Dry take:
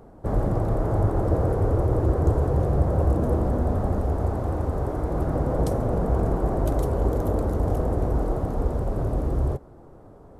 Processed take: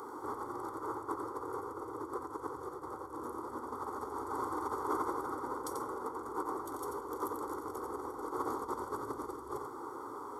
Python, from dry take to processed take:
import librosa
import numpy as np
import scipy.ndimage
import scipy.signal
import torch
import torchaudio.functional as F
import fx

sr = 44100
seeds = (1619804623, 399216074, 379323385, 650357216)

y = fx.over_compress(x, sr, threshold_db=-32.0, ratio=-1.0)
y = scipy.signal.sosfilt(scipy.signal.butter(2, 500.0, 'highpass', fs=sr, output='sos'), y)
y = fx.fixed_phaser(y, sr, hz=680.0, stages=6)
y = y + 0.7 * np.pad(y, (int(0.9 * sr / 1000.0), 0))[:len(y)]
y = y + 10.0 ** (-6.0 / 20.0) * np.pad(y, (int(89 * sr / 1000.0), 0))[:len(y)]
y = y * 10.0 ** (3.5 / 20.0)